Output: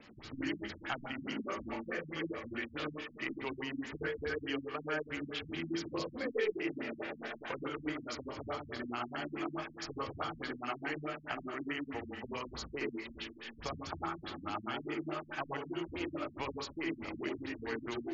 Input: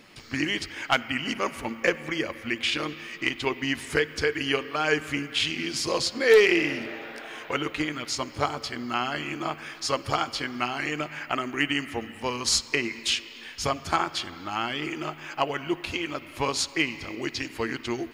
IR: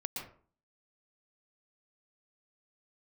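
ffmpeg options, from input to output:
-filter_complex "[0:a]acrossover=split=330|1600[link_01][link_02][link_03];[link_01]acompressor=threshold=-46dB:ratio=4[link_04];[link_02]acompressor=threshold=-36dB:ratio=4[link_05];[link_03]acompressor=threshold=-39dB:ratio=4[link_06];[link_04][link_05][link_06]amix=inputs=3:normalize=0[link_07];[1:a]atrim=start_sample=2205,asetrate=70560,aresample=44100[link_08];[link_07][link_08]afir=irnorm=-1:irlink=0,afftfilt=real='re*lt(b*sr/1024,240*pow(7600/240,0.5+0.5*sin(2*PI*4.7*pts/sr)))':imag='im*lt(b*sr/1024,240*pow(7600/240,0.5+0.5*sin(2*PI*4.7*pts/sr)))':win_size=1024:overlap=0.75,volume=2dB"

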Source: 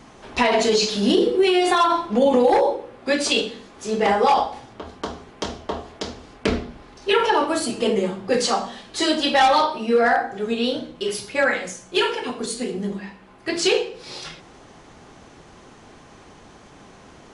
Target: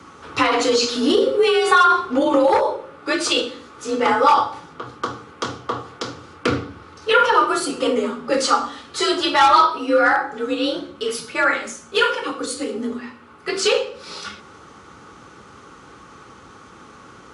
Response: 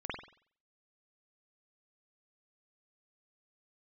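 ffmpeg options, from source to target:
-af "superequalizer=8b=0.501:10b=2.82,afreqshift=45,volume=1dB"

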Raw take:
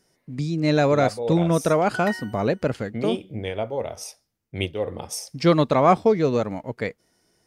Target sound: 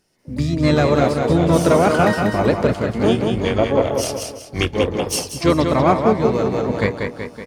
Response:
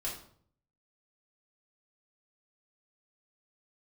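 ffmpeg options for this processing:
-filter_complex "[0:a]aecho=1:1:188|376|564|752|940:0.562|0.247|0.109|0.0479|0.0211,asplit=4[link_01][link_02][link_03][link_04];[link_02]asetrate=22050,aresample=44100,atempo=2,volume=-8dB[link_05];[link_03]asetrate=37084,aresample=44100,atempo=1.18921,volume=-9dB[link_06];[link_04]asetrate=88200,aresample=44100,atempo=0.5,volume=-16dB[link_07];[link_01][link_05][link_06][link_07]amix=inputs=4:normalize=0,dynaudnorm=framelen=110:gausssize=5:maxgain=14dB,volume=-2.5dB"

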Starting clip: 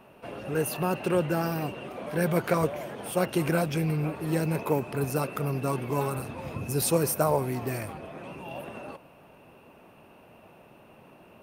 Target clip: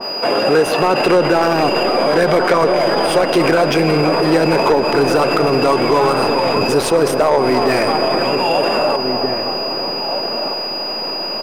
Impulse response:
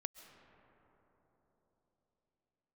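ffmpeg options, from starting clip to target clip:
-filter_complex "[0:a]highpass=360,aemphasis=mode=production:type=cd,aeval=exprs='val(0)+0.0141*sin(2*PI*4900*n/s)':channel_layout=same,acompressor=threshold=-28dB:ratio=6,asoftclip=type=hard:threshold=-28dB,adynamicsmooth=sensitivity=5:basefreq=2200,asplit=2[link_01][link_02];[link_02]adelay=1574,volume=-10dB,highshelf=frequency=4000:gain=-35.4[link_03];[link_01][link_03]amix=inputs=2:normalize=0,asplit=2[link_04][link_05];[1:a]atrim=start_sample=2205,asetrate=48510,aresample=44100[link_06];[link_05][link_06]afir=irnorm=-1:irlink=0,volume=6.5dB[link_07];[link_04][link_07]amix=inputs=2:normalize=0,alimiter=level_in=26.5dB:limit=-1dB:release=50:level=0:latency=1,adynamicequalizer=threshold=0.0708:dfrequency=1700:dqfactor=0.7:tfrequency=1700:tqfactor=0.7:attack=5:release=100:ratio=0.375:range=1.5:mode=cutabove:tftype=highshelf,volume=-5dB"

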